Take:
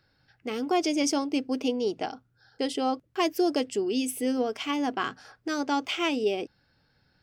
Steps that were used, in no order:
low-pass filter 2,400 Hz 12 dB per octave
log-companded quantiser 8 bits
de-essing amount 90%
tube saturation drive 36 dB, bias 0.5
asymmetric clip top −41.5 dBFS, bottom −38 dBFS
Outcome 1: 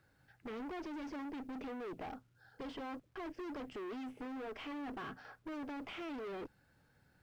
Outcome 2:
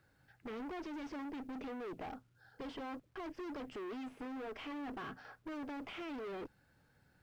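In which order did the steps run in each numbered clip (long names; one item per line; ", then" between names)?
de-essing, then asymmetric clip, then tube saturation, then low-pass filter, then log-companded quantiser
asymmetric clip, then de-essing, then tube saturation, then low-pass filter, then log-companded quantiser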